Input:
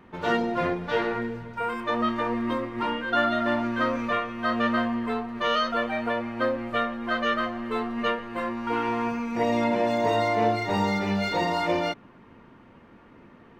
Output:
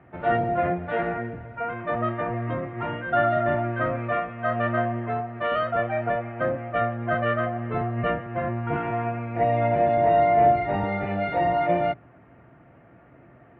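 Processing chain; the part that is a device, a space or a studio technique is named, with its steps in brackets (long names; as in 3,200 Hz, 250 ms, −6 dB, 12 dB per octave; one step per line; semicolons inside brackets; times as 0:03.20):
sub-octave bass pedal (sub-octave generator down 1 octave, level +1 dB; loudspeaker in its box 76–2,300 Hz, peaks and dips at 97 Hz −7 dB, 220 Hz −8 dB, 440 Hz −5 dB, 680 Hz +10 dB, 980 Hz −9 dB)
0:06.81–0:08.77: low-shelf EQ 370 Hz +5.5 dB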